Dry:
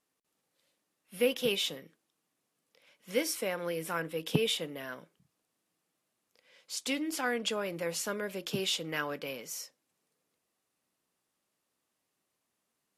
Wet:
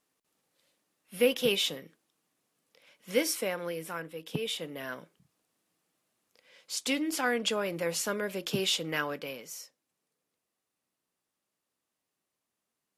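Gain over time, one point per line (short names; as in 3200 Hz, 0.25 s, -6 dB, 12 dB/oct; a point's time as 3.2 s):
3.32 s +3 dB
4.29 s -7 dB
4.87 s +3 dB
8.95 s +3 dB
9.63 s -3.5 dB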